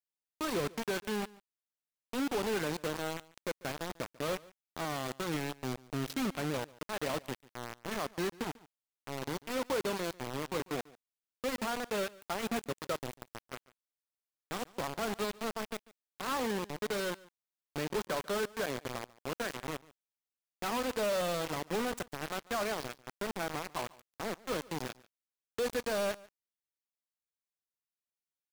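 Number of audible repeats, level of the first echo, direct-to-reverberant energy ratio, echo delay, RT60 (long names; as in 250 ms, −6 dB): 1, −22.0 dB, no reverb audible, 144 ms, no reverb audible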